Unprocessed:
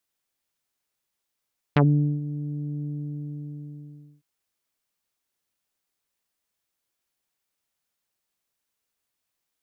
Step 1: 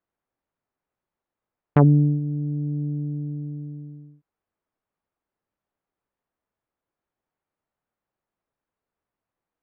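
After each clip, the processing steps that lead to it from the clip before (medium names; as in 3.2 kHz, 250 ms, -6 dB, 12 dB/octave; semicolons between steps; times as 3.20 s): low-pass 1.2 kHz 12 dB/octave; trim +4.5 dB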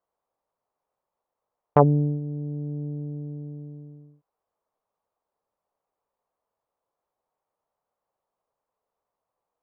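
high-order bell 720 Hz +11.5 dB; trim -5 dB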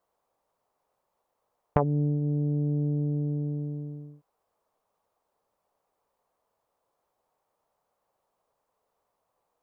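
compression 4:1, threshold -30 dBFS, peak gain reduction 17 dB; trim +6.5 dB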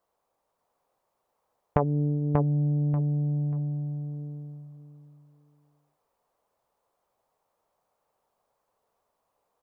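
feedback delay 587 ms, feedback 25%, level -4.5 dB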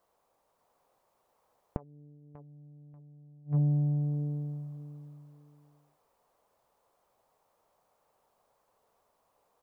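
inverted gate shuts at -23 dBFS, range -32 dB; trim +4 dB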